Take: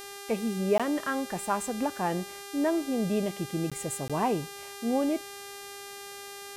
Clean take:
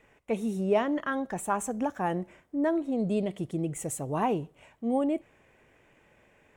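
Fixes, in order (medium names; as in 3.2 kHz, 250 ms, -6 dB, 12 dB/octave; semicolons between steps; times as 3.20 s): de-hum 400.3 Hz, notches 33; interpolate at 0.78/3.70/4.08 s, 16 ms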